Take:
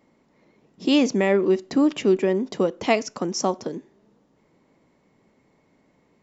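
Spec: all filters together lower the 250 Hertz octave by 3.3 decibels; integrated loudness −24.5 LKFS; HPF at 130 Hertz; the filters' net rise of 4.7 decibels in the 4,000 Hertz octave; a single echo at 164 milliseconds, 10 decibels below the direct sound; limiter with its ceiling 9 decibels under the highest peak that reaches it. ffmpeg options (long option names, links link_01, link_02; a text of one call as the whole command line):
ffmpeg -i in.wav -af "highpass=130,equalizer=frequency=250:width_type=o:gain=-4,equalizer=frequency=4000:width_type=o:gain=7,alimiter=limit=-13.5dB:level=0:latency=1,aecho=1:1:164:0.316" out.wav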